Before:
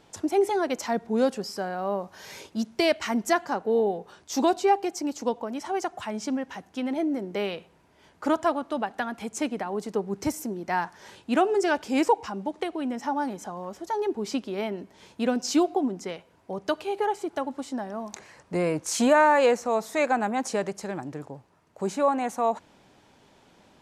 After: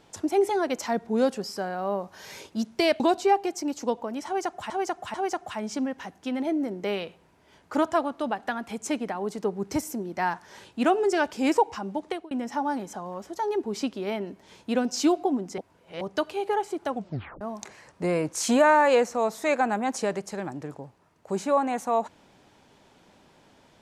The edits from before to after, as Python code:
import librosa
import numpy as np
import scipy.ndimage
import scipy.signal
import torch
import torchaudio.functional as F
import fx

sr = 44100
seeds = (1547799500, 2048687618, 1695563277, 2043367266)

y = fx.edit(x, sr, fx.cut(start_s=3.0, length_s=1.39),
    fx.repeat(start_s=5.65, length_s=0.44, count=3),
    fx.fade_out_span(start_s=12.54, length_s=0.28, curve='qsin'),
    fx.reverse_span(start_s=16.09, length_s=0.43),
    fx.tape_stop(start_s=17.41, length_s=0.51), tone=tone)